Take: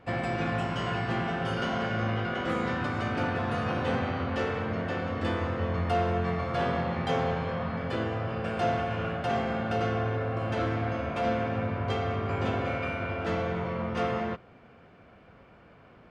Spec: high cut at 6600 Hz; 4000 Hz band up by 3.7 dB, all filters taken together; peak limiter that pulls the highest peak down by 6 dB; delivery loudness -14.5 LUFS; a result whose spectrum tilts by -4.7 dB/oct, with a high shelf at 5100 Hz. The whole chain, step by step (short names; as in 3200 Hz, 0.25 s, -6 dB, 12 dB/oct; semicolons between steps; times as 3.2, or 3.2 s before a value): LPF 6600 Hz; bell 4000 Hz +8 dB; high shelf 5100 Hz -5.5 dB; gain +16.5 dB; limiter -5 dBFS